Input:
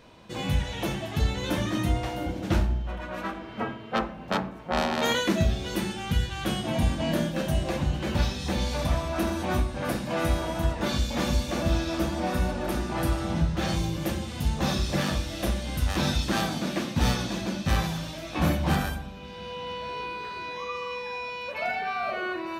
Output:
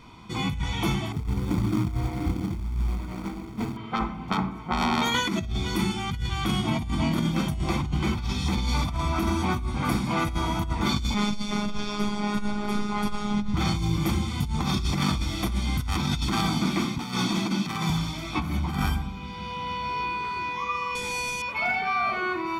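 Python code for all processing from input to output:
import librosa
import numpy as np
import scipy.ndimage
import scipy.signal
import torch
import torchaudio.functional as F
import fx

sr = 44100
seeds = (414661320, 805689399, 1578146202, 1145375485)

y = fx.chain(x, sr, fx.median_filter(points=41),
    fx.quant_float(bits=2), at=(1.12, 3.77))
y = fx.chain(y, sr, fx.lowpass(hz=9100.0, slope=12),
    fx.robotise(hz=207.0), at=(11.14, 13.54))
y = fx.chain(y, sr, fx.highpass(hz=150.0, slope=24),
    fx.over_compress(threshold_db=-31.0, ratio=-0.5),
    fx.overload_stage(gain_db=23.5), at=(16.98, 17.9))
y = fx.chain(y, sr, fx.halfwave_hold(),
    fx.lowpass(hz=11000.0, slope=24),
    fx.peak_eq(hz=1100.0, db=-11.0, octaves=0.57), at=(20.95, 21.42))
y = fx.high_shelf(y, sr, hz=7500.0, db=-4.0)
y = y + 0.83 * np.pad(y, (int(0.9 * sr / 1000.0), 0))[:len(y)]
y = fx.over_compress(y, sr, threshold_db=-25.0, ratio=-1.0)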